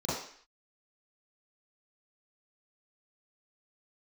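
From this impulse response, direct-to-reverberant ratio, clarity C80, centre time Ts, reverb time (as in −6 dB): −11.0 dB, 5.0 dB, 65 ms, 0.55 s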